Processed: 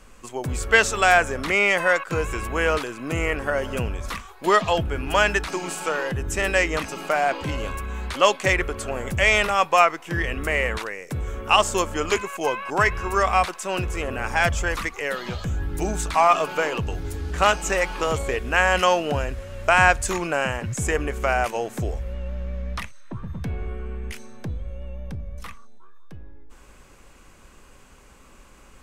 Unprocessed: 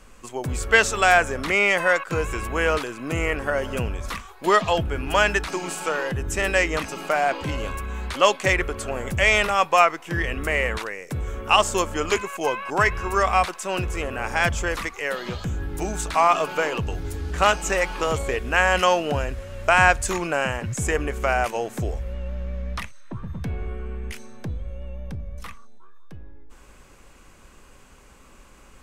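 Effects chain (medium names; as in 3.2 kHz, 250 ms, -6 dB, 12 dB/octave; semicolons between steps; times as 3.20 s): 14.08–16.35 s: phaser 1.1 Hz, delay 1.8 ms, feedback 27%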